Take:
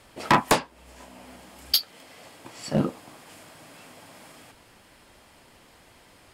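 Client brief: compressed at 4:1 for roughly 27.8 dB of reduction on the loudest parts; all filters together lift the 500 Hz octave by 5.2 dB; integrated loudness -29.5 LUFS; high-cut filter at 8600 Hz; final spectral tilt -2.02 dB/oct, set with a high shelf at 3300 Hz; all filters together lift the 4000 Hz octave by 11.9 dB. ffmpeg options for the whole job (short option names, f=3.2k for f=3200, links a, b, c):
-af "lowpass=8.6k,equalizer=f=500:t=o:g=6,highshelf=f=3.3k:g=8.5,equalizer=f=4k:t=o:g=8,acompressor=threshold=-41dB:ratio=4,volume=13.5dB"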